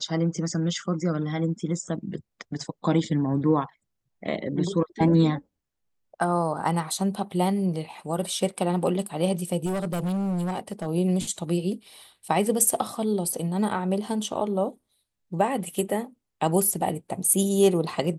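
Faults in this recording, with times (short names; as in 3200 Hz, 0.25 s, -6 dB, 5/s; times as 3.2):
9.65–10.87 clipped -24 dBFS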